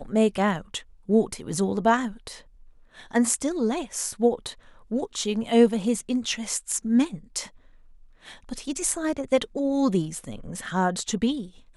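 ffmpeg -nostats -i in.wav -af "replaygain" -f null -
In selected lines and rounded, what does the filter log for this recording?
track_gain = +5.0 dB
track_peak = 0.371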